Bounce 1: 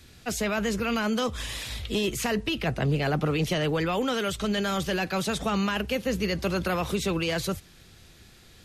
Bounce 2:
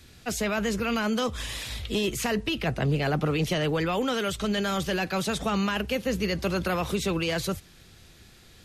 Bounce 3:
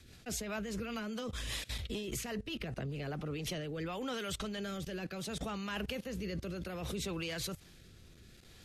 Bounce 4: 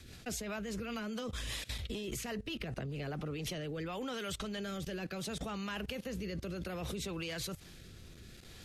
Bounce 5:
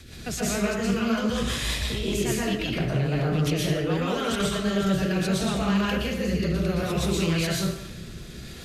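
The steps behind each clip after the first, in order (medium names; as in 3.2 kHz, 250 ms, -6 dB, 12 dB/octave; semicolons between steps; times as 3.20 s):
no audible change
level held to a coarse grid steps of 18 dB; rotary cabinet horn 5 Hz, later 0.65 Hz, at 2.95 s; trim -1 dB
compression, threshold -41 dBFS, peak gain reduction 7 dB; trim +4.5 dB
plate-style reverb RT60 0.76 s, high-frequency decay 0.75×, pre-delay 105 ms, DRR -5 dB; loudspeaker Doppler distortion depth 0.11 ms; trim +7 dB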